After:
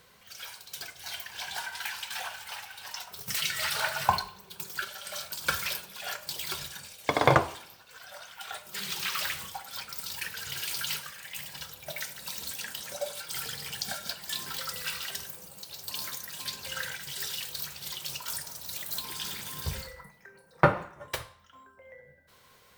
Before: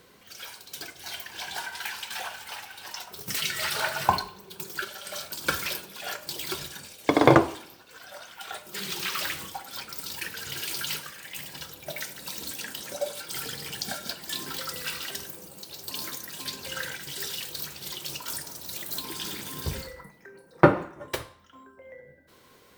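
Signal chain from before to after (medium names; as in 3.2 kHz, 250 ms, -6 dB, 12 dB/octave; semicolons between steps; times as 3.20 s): peaking EQ 310 Hz -12.5 dB 1 oct; trim -1 dB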